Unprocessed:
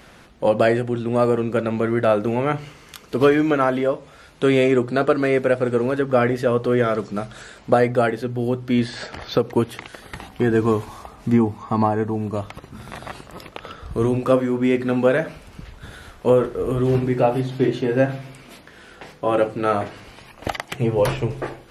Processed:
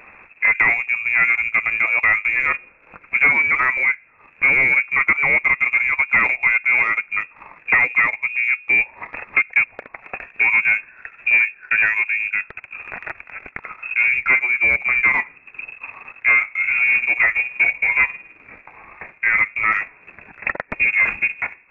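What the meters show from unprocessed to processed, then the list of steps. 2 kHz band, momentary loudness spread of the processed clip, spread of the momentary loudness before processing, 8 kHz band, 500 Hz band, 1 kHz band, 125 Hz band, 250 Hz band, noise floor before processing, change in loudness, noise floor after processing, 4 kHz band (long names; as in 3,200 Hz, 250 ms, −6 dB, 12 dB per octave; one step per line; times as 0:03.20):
+16.5 dB, 18 LU, 18 LU, can't be measured, −20.0 dB, −2.0 dB, below −15 dB, −21.0 dB, −47 dBFS, +4.5 dB, −52 dBFS, below −10 dB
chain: sine wavefolder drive 7 dB, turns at −3 dBFS
voice inversion scrambler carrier 2,600 Hz
transient designer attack +2 dB, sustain −11 dB
level −8 dB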